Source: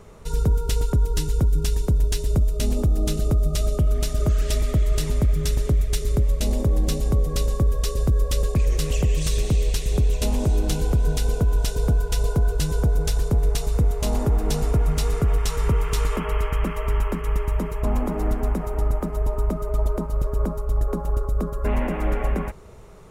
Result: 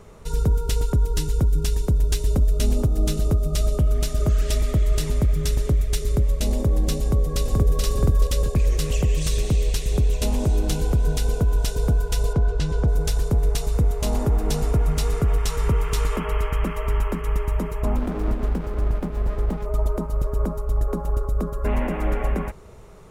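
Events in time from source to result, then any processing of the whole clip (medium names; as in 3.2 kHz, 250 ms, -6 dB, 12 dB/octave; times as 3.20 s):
1.60–2.10 s: echo throw 480 ms, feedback 75%, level -6.5 dB
7.02–7.83 s: echo throw 430 ms, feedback 35%, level -2 dB
12.33–12.88 s: Bessel low-pass 4.2 kHz
17.96–19.66 s: sliding maximum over 33 samples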